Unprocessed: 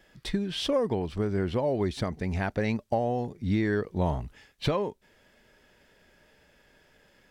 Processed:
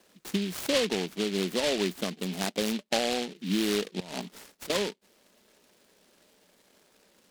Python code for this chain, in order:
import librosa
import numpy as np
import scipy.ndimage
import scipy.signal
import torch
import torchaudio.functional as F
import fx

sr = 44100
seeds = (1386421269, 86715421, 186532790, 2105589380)

y = scipy.signal.sosfilt(scipy.signal.ellip(4, 1.0, 40, 180.0, 'highpass', fs=sr, output='sos'), x)
y = fx.over_compress(y, sr, threshold_db=-40.0, ratio=-1.0, at=(4.0, 4.7))
y = scipy.signal.sosfilt(scipy.signal.butter(4, 3300.0, 'lowpass', fs=sr, output='sos'), y)
y = fx.noise_mod_delay(y, sr, seeds[0], noise_hz=3000.0, depth_ms=0.17)